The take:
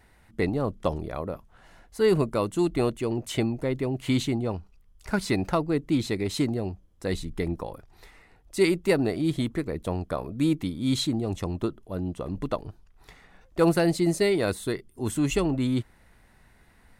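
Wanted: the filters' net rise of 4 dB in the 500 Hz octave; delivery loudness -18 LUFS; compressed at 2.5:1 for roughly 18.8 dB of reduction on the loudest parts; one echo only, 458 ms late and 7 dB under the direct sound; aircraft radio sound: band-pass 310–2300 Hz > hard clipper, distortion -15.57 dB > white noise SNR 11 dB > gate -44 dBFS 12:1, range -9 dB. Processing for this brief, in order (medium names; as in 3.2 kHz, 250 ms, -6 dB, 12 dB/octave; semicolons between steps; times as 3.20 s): peaking EQ 500 Hz +6.5 dB; compression 2.5:1, threshold -42 dBFS; band-pass 310–2300 Hz; delay 458 ms -7 dB; hard clipper -33 dBFS; white noise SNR 11 dB; gate -44 dBFS 12:1, range -9 dB; trim +23.5 dB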